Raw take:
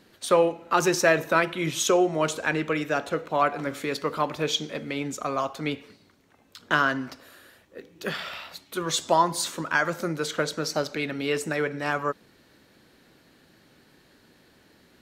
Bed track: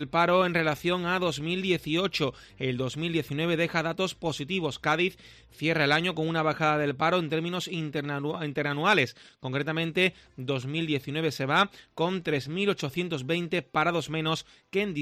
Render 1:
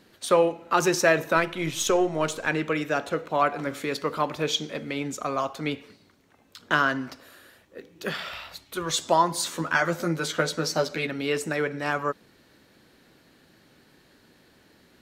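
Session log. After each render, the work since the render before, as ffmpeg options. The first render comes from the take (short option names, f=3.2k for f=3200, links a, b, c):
-filter_complex "[0:a]asettb=1/sr,asplit=3[a][b][c];[a]atrim=end=1.374[d];[b]atrim=start=1.37:end=2.48,asetpts=PTS-STARTPTS,afade=t=in:d=0.004:c=qsin,afade=t=out:st=1.106:d=0.004:c=qsin,aeval=exprs='if(lt(val(0),0),0.708*val(0),val(0))':c=same[e];[c]atrim=start=2.476[f];[d][e]acrossfade=d=0.004:c1=hsin:c2=qsin[g];[g][f]acrossfade=d=0.004:c1=qsin:c2=hsin,asplit=3[h][i][j];[h]afade=t=out:st=8.3:d=0.02[k];[i]asubboost=boost=4:cutoff=91,afade=t=in:st=8.3:d=0.02,afade=t=out:st=8.98:d=0.02[l];[j]afade=t=in:st=8.98:d=0.02[m];[k][l][m]amix=inputs=3:normalize=0,asettb=1/sr,asplit=3[n][o][p];[n]atrim=end=9.504[q];[o]atrim=start=9.5:end=11.07,asetpts=PTS-STARTPTS,afade=t=in:d=0.004:c=qsin,afade=t=out:st=1.566:d=0.004:c=qsin,asplit=2[r][s];[s]adelay=12,volume=-3.5dB[t];[r][t]amix=inputs=2:normalize=0,atrim=end_sample=69237[u];[p]atrim=start=11.066[v];[q][u]acrossfade=d=0.004:c1=hsin:c2=qsin[w];[w][v]acrossfade=d=0.004:c1=qsin:c2=hsin"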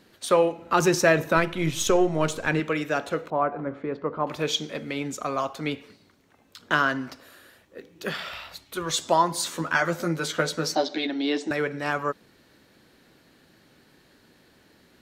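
-filter_complex "[0:a]asettb=1/sr,asplit=3[a][b][c];[a]atrim=end=0.574[d];[b]atrim=start=0.57:end=2.6,asetpts=PTS-STARTPTS,afade=t=in:d=0.004:c=qsin,afade=t=out:st=2.026:d=0.004:c=qsin,lowshelf=f=190:g=9.5[e];[c]atrim=start=2.596[f];[d][e]acrossfade=d=0.004:c1=hsin:c2=qsin[g];[g][f]acrossfade=d=0.004:c1=qsin:c2=hsin,asettb=1/sr,asplit=3[h][i][j];[h]atrim=end=3.304[k];[i]atrim=start=3.3:end=4.27,asetpts=PTS-STARTPTS,afade=t=in:d=0.004:c=qsin,afade=t=out:st=0.966:d=0.004:c=qsin,lowpass=1.1k[l];[j]atrim=start=4.266[m];[k][l]acrossfade=d=0.004:c1=hsin:c2=qsin[n];[n][m]acrossfade=d=0.004:c1=qsin:c2=hsin,asettb=1/sr,asplit=3[o][p][q];[o]atrim=end=10.754[r];[p]atrim=start=10.75:end=11.51,asetpts=PTS-STARTPTS,afade=t=in:d=0.004:c=qsin,afade=t=out:st=0.756:d=0.004:c=qsin,highpass=f=240:w=0.5412,highpass=f=240:w=1.3066,equalizer=f=300:t=q:w=4:g=9,equalizer=f=480:t=q:w=4:g=-6,equalizer=f=760:t=q:w=4:g=8,equalizer=f=1.3k:t=q:w=4:g=-10,equalizer=f=2.5k:t=q:w=4:g=-6,equalizer=f=3.6k:t=q:w=4:g=9,lowpass=f=5.9k:w=0.5412,lowpass=f=5.9k:w=1.3066[s];[q]atrim=start=11.506[t];[r][s]acrossfade=d=0.004:c1=hsin:c2=qsin[u];[u][t]acrossfade=d=0.004:c1=qsin:c2=hsin"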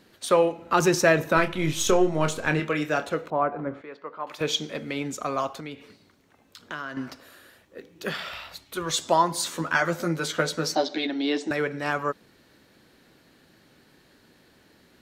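-filter_complex "[0:a]asettb=1/sr,asplit=3[a][b][c];[a]atrim=end=1.344[d];[b]atrim=start=1.34:end=3.05,asetpts=PTS-STARTPTS,afade=t=in:d=0.004:c=qsin,afade=t=out:st=1.706:d=0.004:c=qsin,asplit=2[e][f];[f]adelay=27,volume=-8.5dB[g];[e][g]amix=inputs=2:normalize=0,atrim=end_sample=75411[h];[c]atrim=start=3.046[i];[d][h]acrossfade=d=0.004:c1=hsin:c2=qsin[j];[j][i]acrossfade=d=0.004:c1=qsin:c2=hsin,asettb=1/sr,asplit=3[k][l][m];[k]atrim=end=3.814[n];[l]atrim=start=3.81:end=4.41,asetpts=PTS-STARTPTS,afade=t=in:d=0.004:c=qsin,afade=t=out:st=0.596:d=0.004:c=qsin,highpass=f=1.5k:p=1[o];[m]atrim=start=4.406[p];[n][o]acrossfade=d=0.004:c1=hsin:c2=qsin[q];[q][p]acrossfade=d=0.004:c1=qsin:c2=hsin,asettb=1/sr,asplit=3[r][s][t];[r]atrim=end=5.604[u];[s]atrim=start=5.6:end=6.97,asetpts=PTS-STARTPTS,afade=t=in:d=0.004:c=qsin,afade=t=out:st=1.366:d=0.004:c=qsin,acompressor=threshold=-40dB:ratio=2:attack=3.2:release=140:knee=1:detection=peak[v];[t]atrim=start=6.966[w];[u][v]acrossfade=d=0.004:c1=hsin:c2=qsin[x];[x][w]acrossfade=d=0.004:c1=qsin:c2=hsin"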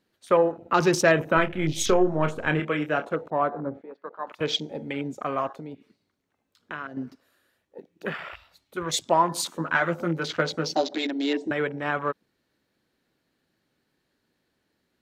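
-af "afwtdn=0.0178"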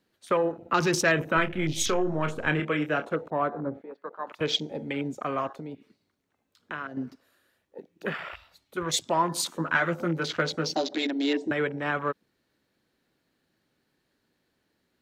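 -filter_complex "[0:a]acrossover=split=620|970[a][b][c];[a]alimiter=limit=-19.5dB:level=0:latency=1[d];[b]acompressor=threshold=-41dB:ratio=6[e];[d][e][c]amix=inputs=3:normalize=0"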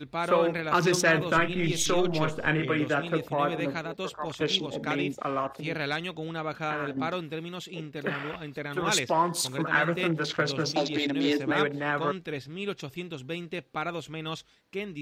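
-filter_complex "[1:a]volume=-7dB[a];[0:a][a]amix=inputs=2:normalize=0"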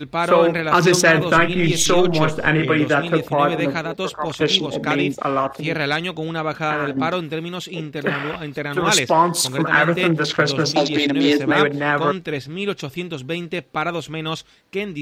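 -af "volume=9.5dB,alimiter=limit=-3dB:level=0:latency=1"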